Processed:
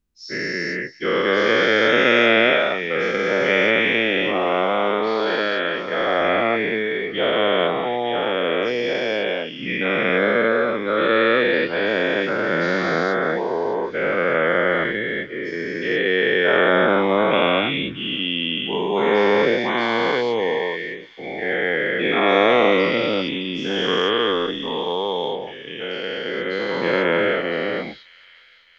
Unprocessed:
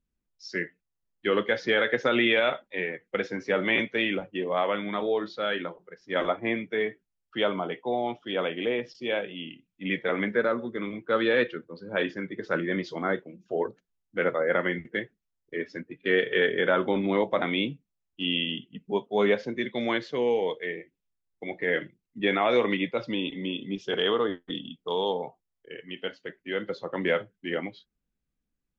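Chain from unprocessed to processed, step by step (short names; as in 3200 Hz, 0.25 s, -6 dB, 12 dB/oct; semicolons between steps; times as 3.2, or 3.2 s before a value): spectral dilation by 0.48 s; thin delay 0.612 s, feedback 54%, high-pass 3000 Hz, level -14 dB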